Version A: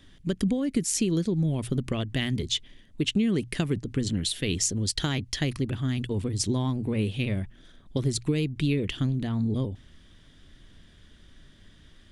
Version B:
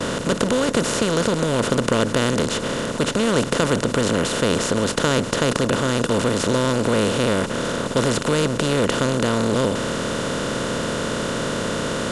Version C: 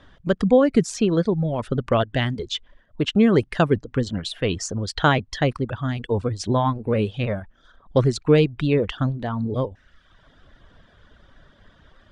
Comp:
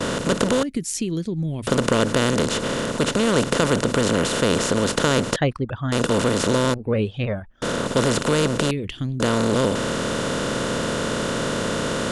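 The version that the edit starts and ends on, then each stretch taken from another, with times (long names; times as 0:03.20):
B
0:00.63–0:01.67: punch in from A
0:05.36–0:05.92: punch in from C
0:06.74–0:07.62: punch in from C
0:08.71–0:09.20: punch in from A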